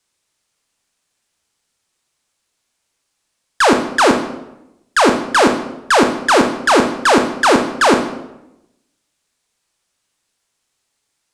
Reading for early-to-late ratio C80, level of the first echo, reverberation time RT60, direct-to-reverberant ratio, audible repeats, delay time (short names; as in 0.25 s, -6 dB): 10.0 dB, none, 0.90 s, 4.5 dB, none, none